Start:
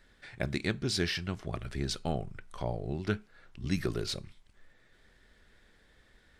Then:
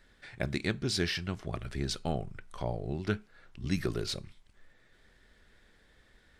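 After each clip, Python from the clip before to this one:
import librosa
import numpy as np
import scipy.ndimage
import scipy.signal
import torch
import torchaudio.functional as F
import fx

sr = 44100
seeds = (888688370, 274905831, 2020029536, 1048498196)

y = x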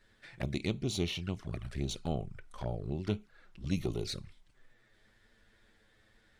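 y = fx.diode_clip(x, sr, knee_db=-23.5)
y = fx.env_flanger(y, sr, rest_ms=10.5, full_db=-30.5)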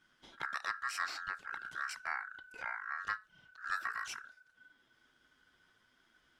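y = x * np.sin(2.0 * np.pi * 1500.0 * np.arange(len(x)) / sr)
y = y * 10.0 ** (-2.0 / 20.0)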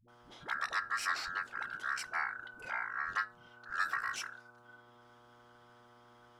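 y = fx.dmg_buzz(x, sr, base_hz=120.0, harmonics=11, level_db=-65.0, tilt_db=0, odd_only=False)
y = fx.dispersion(y, sr, late='highs', ms=84.0, hz=310.0)
y = y * 10.0 ** (3.0 / 20.0)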